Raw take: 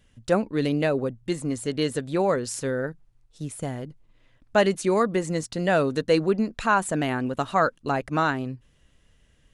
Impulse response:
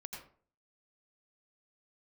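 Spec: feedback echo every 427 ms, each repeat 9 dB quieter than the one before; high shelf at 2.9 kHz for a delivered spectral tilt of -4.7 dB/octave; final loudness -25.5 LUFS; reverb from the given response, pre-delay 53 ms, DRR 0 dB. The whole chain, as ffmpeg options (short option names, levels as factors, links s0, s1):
-filter_complex "[0:a]highshelf=f=2900:g=6,aecho=1:1:427|854|1281|1708:0.355|0.124|0.0435|0.0152,asplit=2[s0][s1];[1:a]atrim=start_sample=2205,adelay=53[s2];[s1][s2]afir=irnorm=-1:irlink=0,volume=1.41[s3];[s0][s3]amix=inputs=2:normalize=0,volume=0.631"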